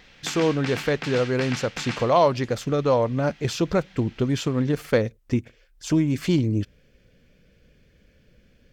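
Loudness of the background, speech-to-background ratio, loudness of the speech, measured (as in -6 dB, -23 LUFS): -33.5 LUFS, 9.5 dB, -24.0 LUFS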